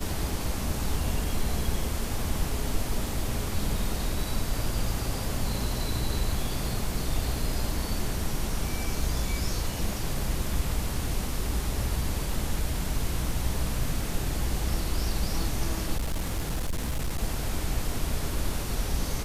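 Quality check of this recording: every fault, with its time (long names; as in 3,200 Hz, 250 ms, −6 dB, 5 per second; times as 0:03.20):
0:15.97–0:17.23: clipping −24.5 dBFS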